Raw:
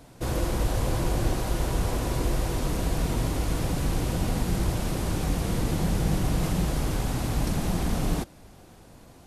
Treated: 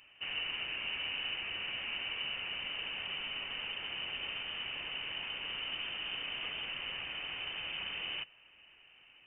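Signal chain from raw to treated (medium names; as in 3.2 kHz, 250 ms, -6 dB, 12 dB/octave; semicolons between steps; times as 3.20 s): high-pass 290 Hz 24 dB/octave; frequency inversion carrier 3.3 kHz; trim -5.5 dB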